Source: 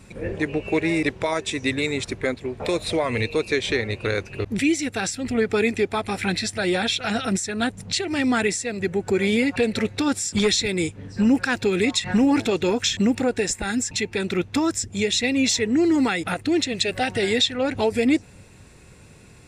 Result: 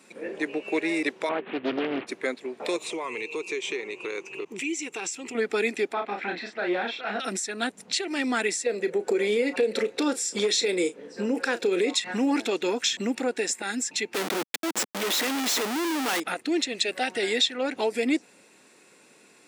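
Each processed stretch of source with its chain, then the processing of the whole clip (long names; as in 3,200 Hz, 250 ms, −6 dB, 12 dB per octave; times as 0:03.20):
0:01.29–0:02.07: variable-slope delta modulation 16 kbit/s + low-shelf EQ 290 Hz +11.5 dB + highs frequency-modulated by the lows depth 0.75 ms
0:02.76–0:05.35: EQ curve with evenly spaced ripples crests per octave 0.72, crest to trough 11 dB + downward compressor 2 to 1, threshold −28 dBFS
0:05.93–0:07.20: mid-hump overdrive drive 10 dB, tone 2,900 Hz, clips at −10.5 dBFS + head-to-tape spacing loss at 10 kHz 31 dB + double-tracking delay 34 ms −4.5 dB
0:08.66–0:11.94: parametric band 480 Hz +12.5 dB 0.59 octaves + downward compressor, threshold −15 dBFS + double-tracking delay 34 ms −13 dB
0:14.14–0:16.20: volume swells 500 ms + comparator with hysteresis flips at −34 dBFS
whole clip: high-pass filter 260 Hz 24 dB per octave; parametric band 480 Hz −2 dB 2.1 octaves; level −2.5 dB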